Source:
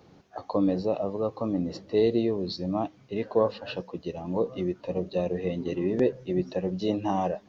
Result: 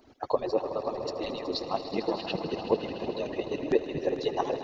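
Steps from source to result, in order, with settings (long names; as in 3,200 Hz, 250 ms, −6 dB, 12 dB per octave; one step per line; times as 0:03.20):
harmonic-percussive split with one part muted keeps percussive
echo that builds up and dies away 120 ms, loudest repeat 5, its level −14 dB
time stretch by overlap-add 0.62×, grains 53 ms
level +4.5 dB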